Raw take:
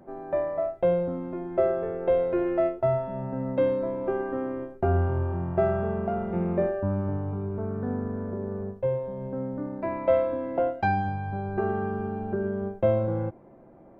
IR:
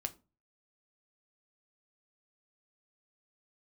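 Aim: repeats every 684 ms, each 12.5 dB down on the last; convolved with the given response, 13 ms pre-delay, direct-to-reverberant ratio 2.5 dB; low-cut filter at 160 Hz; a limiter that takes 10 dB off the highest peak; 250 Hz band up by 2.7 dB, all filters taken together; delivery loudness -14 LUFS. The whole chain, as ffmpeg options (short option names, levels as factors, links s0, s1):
-filter_complex "[0:a]highpass=160,equalizer=f=250:t=o:g=5,alimiter=limit=0.1:level=0:latency=1,aecho=1:1:684|1368|2052:0.237|0.0569|0.0137,asplit=2[s0][s1];[1:a]atrim=start_sample=2205,adelay=13[s2];[s1][s2]afir=irnorm=-1:irlink=0,volume=0.794[s3];[s0][s3]amix=inputs=2:normalize=0,volume=4.47"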